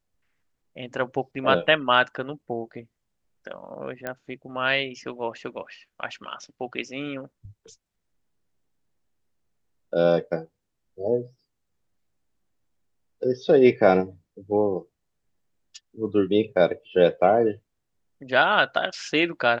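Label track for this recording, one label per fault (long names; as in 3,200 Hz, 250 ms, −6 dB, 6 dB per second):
4.070000	4.070000	click −16 dBFS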